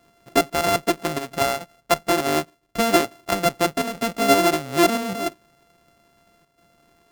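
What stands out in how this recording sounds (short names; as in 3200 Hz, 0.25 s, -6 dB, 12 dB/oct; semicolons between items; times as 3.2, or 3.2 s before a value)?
a buzz of ramps at a fixed pitch in blocks of 64 samples; chopped level 0.76 Hz, depth 60%, duty 90%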